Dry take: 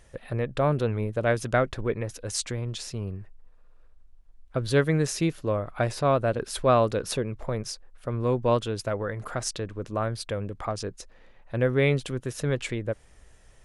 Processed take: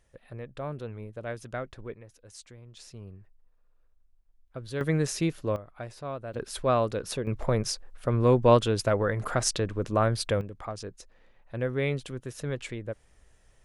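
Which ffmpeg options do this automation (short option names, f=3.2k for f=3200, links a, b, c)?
-af "asetnsamples=n=441:p=0,asendcmd='1.95 volume volume -18dB;2.77 volume volume -11.5dB;4.81 volume volume -2dB;5.56 volume volume -13.5dB;6.34 volume volume -4dB;7.27 volume volume 4dB;10.41 volume volume -6dB',volume=-12dB"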